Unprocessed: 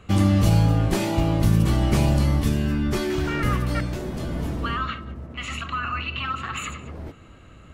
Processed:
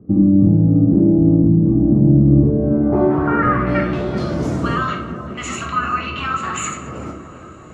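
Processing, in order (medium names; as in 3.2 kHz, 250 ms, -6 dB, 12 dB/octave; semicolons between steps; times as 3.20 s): high-pass 120 Hz 12 dB/octave; peaking EQ 3.4 kHz -9 dB 1.9 oct; peak limiter -18 dBFS, peak gain reduction 8 dB; low-pass sweep 280 Hz -> 7 kHz, 2.22–4.54 s; tape echo 382 ms, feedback 77%, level -12 dB, low-pass 1.5 kHz; on a send at -1.5 dB: reverberation RT60 0.55 s, pre-delay 6 ms; on the sum: trim +7 dB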